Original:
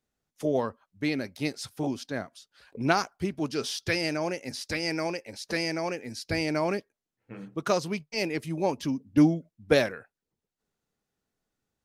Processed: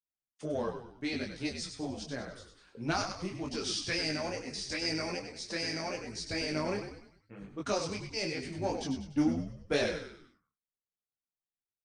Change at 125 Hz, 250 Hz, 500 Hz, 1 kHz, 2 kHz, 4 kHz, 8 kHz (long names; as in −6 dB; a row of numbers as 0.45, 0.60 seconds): −6.5, −6.5, −6.5, −6.5, −5.5, −1.0, −1.0 decibels